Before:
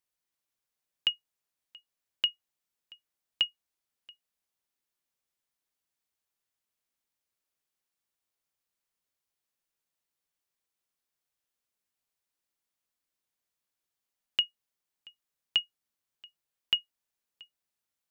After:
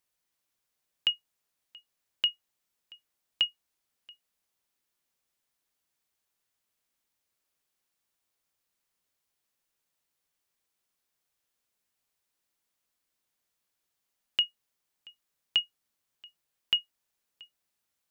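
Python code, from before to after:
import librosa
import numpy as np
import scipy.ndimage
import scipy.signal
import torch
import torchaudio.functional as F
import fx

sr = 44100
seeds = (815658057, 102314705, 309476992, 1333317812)

y = fx.transient(x, sr, attack_db=-5, sustain_db=0)
y = y * 10.0 ** (5.0 / 20.0)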